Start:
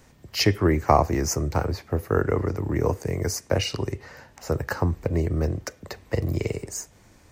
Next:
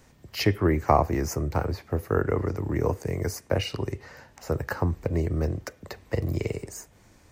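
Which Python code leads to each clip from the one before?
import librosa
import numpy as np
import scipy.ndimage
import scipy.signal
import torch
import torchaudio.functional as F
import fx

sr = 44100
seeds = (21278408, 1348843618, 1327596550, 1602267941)

y = fx.dynamic_eq(x, sr, hz=6000.0, q=1.1, threshold_db=-45.0, ratio=4.0, max_db=-7)
y = F.gain(torch.from_numpy(y), -2.0).numpy()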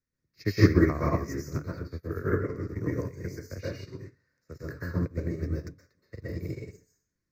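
y = fx.fixed_phaser(x, sr, hz=3000.0, stages=6)
y = fx.rev_plate(y, sr, seeds[0], rt60_s=0.53, hf_ratio=0.9, predelay_ms=110, drr_db=-4.5)
y = fx.upward_expand(y, sr, threshold_db=-37.0, expansion=2.5)
y = F.gain(torch.from_numpy(y), 2.5).numpy()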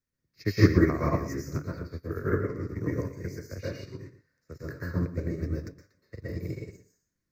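y = x + 10.0 ** (-13.5 / 20.0) * np.pad(x, (int(115 * sr / 1000.0), 0))[:len(x)]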